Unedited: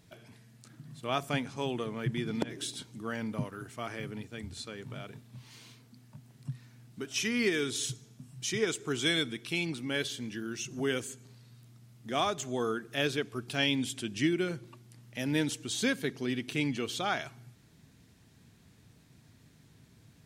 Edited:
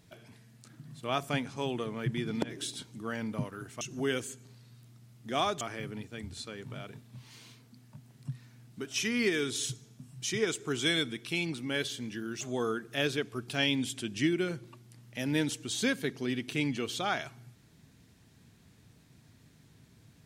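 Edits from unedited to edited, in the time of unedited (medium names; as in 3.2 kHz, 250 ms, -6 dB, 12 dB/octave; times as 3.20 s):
10.61–12.41 s: move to 3.81 s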